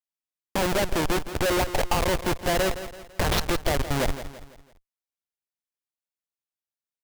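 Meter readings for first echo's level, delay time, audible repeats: -12.0 dB, 0.167 s, 4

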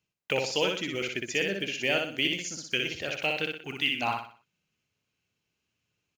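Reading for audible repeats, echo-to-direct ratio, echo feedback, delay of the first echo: 4, -3.0 dB, 37%, 61 ms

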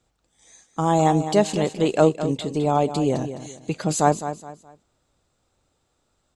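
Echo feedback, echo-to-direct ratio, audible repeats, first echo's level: 31%, -10.5 dB, 3, -11.0 dB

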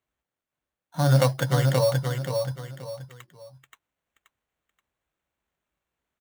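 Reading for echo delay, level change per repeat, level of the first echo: 0.528 s, -9.5 dB, -4.5 dB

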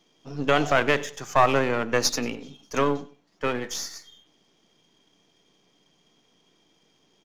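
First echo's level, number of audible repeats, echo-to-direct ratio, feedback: -20.0 dB, 2, -19.5 dB, 29%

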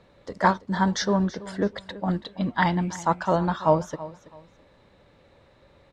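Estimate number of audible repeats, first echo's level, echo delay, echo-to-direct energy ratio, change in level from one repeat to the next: 2, -17.0 dB, 0.329 s, -16.5 dB, -11.5 dB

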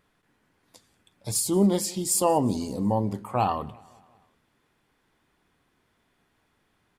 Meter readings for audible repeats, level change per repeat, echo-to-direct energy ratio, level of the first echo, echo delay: 3, -5.0 dB, -22.5 dB, -24.0 dB, 0.183 s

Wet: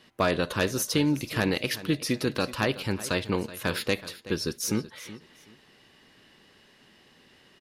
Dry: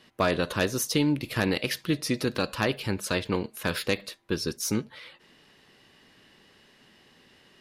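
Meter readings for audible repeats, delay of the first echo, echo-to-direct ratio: 2, 0.376 s, -16.0 dB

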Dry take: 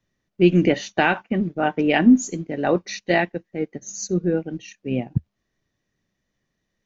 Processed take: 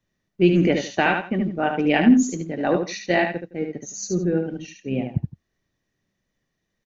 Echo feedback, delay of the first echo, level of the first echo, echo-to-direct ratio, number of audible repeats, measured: no steady repeat, 74 ms, -5.5 dB, -5.5 dB, 2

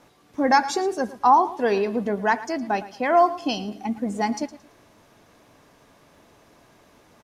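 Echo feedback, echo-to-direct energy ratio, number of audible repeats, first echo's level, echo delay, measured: 28%, -16.0 dB, 2, -16.5 dB, 0.112 s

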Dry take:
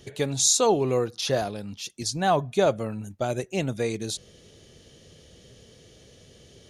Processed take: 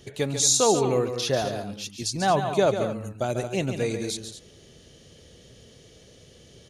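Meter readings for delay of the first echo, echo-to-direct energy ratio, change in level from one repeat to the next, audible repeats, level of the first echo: 0.142 s, -7.0 dB, no steady repeat, 2, -8.5 dB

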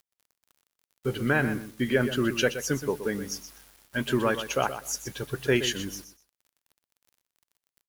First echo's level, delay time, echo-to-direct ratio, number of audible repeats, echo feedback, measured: -11.0 dB, 0.123 s, -11.0 dB, 2, 18%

